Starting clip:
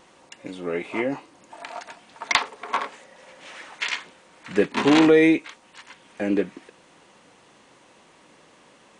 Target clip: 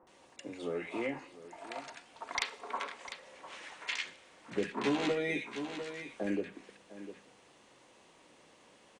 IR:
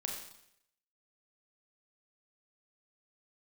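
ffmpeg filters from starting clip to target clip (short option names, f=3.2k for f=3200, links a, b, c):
-filter_complex "[0:a]asettb=1/sr,asplit=3[a][b][c];[a]atrim=end=4.774[d];[b]atrim=start=4.77:end=6.23,asetpts=PTS-STARTPTS,afade=t=in:d=0.004:c=qsin,afade=t=out:st=1.456:d=0.004:c=qsin,asplit=2[e][f];[f]adelay=14,volume=-2dB[g];[e][g]amix=inputs=2:normalize=0,atrim=end_sample=64386[h];[c]atrim=start=6.226[i];[d][h]acrossfade=d=0.004:c1=hsin:c2=qsin[j];[j][i]acrossfade=d=0.004:c1=qsin:c2=hsin,asplit=2[k][l];[l]aecho=0:1:700:0.133[m];[k][m]amix=inputs=2:normalize=0,acompressor=threshold=-25dB:ratio=2.5,acrossover=split=190|1300[n][o][p];[n]adelay=30[q];[p]adelay=70[r];[q][o][r]amix=inputs=3:normalize=0,asplit=2[s][t];[1:a]atrim=start_sample=2205,asetrate=41454,aresample=44100[u];[t][u]afir=irnorm=-1:irlink=0,volume=-15dB[v];[s][v]amix=inputs=2:normalize=0,volume=-7.5dB"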